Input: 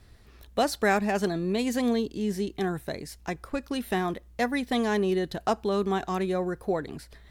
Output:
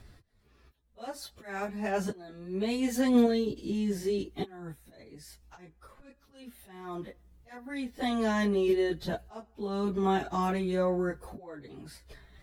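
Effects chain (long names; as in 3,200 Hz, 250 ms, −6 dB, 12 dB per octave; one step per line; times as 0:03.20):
in parallel at −2 dB: output level in coarse steps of 12 dB
on the sum: high-shelf EQ 2,100 Hz −2.5 dB
volume swells 472 ms
time stretch by phase vocoder 1.7×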